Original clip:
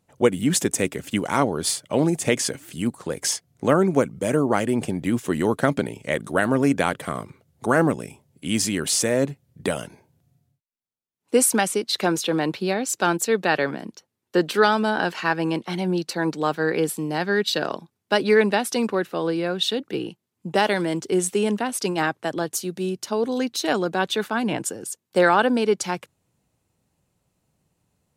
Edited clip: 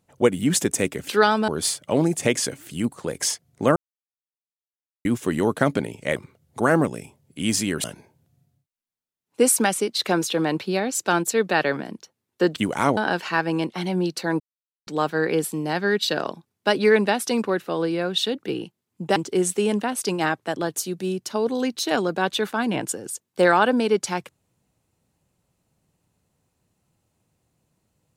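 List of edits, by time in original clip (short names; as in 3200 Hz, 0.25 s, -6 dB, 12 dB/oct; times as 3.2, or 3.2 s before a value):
1.09–1.5 swap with 14.5–14.89
3.78–5.07 mute
6.18–7.22 cut
8.9–9.78 cut
16.32 insert silence 0.47 s
20.61–20.93 cut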